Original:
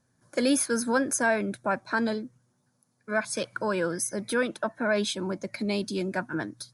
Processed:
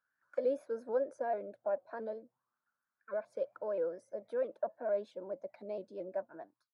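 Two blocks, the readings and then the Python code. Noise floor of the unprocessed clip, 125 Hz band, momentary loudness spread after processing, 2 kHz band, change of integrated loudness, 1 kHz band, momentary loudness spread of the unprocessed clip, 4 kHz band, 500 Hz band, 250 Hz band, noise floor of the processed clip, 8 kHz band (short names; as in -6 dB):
-72 dBFS, under -20 dB, 9 LU, -24.0 dB, -10.0 dB, -12.0 dB, 8 LU, under -30 dB, -5.5 dB, -20.5 dB, under -85 dBFS, under -35 dB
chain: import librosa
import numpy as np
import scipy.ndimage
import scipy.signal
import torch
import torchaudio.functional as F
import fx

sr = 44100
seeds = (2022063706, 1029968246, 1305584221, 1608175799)

y = fx.fade_out_tail(x, sr, length_s=0.52)
y = fx.auto_wah(y, sr, base_hz=560.0, top_hz=1500.0, q=6.2, full_db=-28.0, direction='down')
y = fx.vibrato_shape(y, sr, shape='saw_up', rate_hz=4.5, depth_cents=100.0)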